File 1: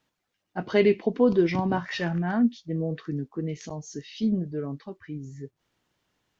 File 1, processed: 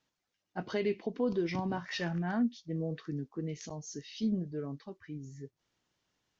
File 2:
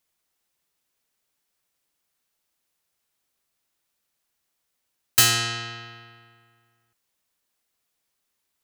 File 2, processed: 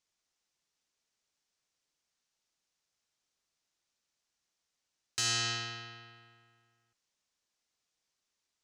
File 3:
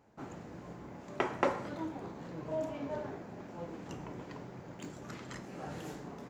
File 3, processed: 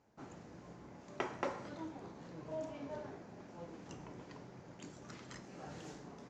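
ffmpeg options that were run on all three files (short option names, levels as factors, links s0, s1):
-af "alimiter=limit=0.158:level=0:latency=1:release=220,lowpass=f=6200:t=q:w=1.8,volume=0.473"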